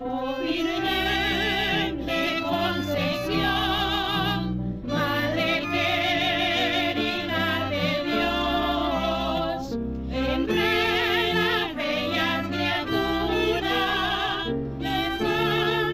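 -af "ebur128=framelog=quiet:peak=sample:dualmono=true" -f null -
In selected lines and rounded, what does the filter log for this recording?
Integrated loudness:
  I:         -21.2 LUFS
  Threshold: -31.2 LUFS
Loudness range:
  LRA:         1.4 LU
  Threshold: -41.2 LUFS
  LRA low:   -21.9 LUFS
  LRA high:  -20.4 LUFS
Sample peak:
  Peak:      -10.9 dBFS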